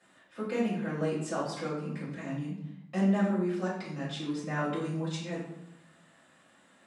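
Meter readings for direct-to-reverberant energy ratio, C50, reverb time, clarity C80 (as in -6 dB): -10.0 dB, 3.0 dB, 0.80 s, 6.5 dB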